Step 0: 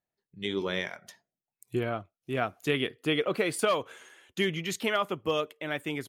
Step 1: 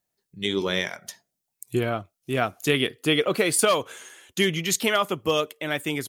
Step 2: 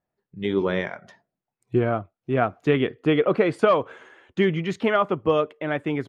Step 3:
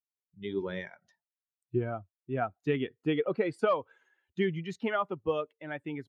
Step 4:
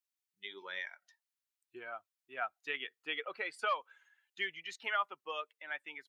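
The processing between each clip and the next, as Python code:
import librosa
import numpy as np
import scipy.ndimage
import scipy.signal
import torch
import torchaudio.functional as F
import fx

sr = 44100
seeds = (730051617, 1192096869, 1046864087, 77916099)

y1 = fx.bass_treble(x, sr, bass_db=1, treble_db=9)
y1 = F.gain(torch.from_numpy(y1), 5.0).numpy()
y2 = scipy.signal.sosfilt(scipy.signal.butter(2, 1500.0, 'lowpass', fs=sr, output='sos'), y1)
y2 = F.gain(torch.from_numpy(y2), 3.5).numpy()
y3 = fx.bin_expand(y2, sr, power=1.5)
y3 = F.gain(torch.from_numpy(y3), -7.0).numpy()
y4 = scipy.signal.sosfilt(scipy.signal.butter(2, 1400.0, 'highpass', fs=sr, output='sos'), y3)
y4 = F.gain(torch.from_numpy(y4), 3.0).numpy()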